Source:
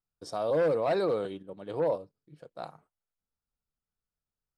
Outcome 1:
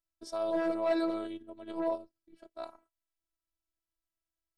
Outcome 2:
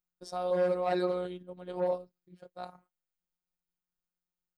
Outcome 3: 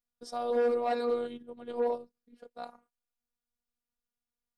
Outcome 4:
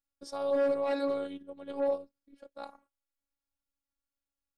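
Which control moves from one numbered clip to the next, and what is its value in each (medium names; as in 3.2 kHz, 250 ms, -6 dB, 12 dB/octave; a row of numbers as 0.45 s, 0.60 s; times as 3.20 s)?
robot voice, frequency: 330 Hz, 180 Hz, 240 Hz, 280 Hz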